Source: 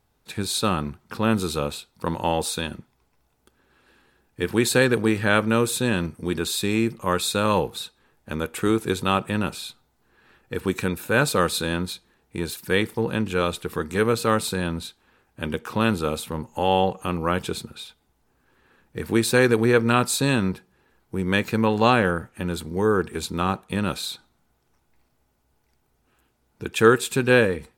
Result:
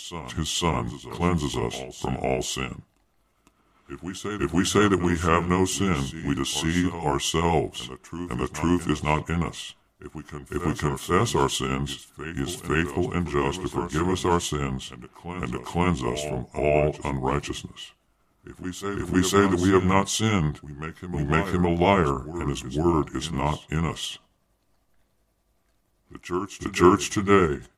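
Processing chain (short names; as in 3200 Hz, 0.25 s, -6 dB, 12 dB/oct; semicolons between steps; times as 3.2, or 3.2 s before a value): delay-line pitch shifter -4 st; vibrato 9.2 Hz 20 cents; reverse echo 0.505 s -11.5 dB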